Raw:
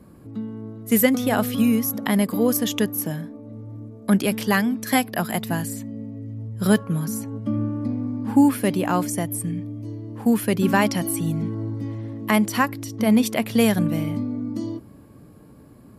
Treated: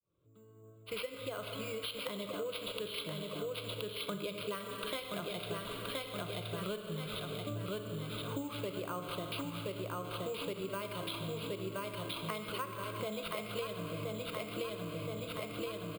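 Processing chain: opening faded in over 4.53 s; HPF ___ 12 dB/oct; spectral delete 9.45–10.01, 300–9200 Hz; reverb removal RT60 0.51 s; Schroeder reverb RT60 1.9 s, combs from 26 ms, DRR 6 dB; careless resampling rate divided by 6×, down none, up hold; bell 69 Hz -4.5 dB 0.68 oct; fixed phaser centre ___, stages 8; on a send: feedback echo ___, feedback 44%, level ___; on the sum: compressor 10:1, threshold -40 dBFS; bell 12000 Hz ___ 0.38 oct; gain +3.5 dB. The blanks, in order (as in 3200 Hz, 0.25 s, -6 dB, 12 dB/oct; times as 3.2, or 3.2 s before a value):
48 Hz, 1200 Hz, 1.023 s, -4 dB, -5 dB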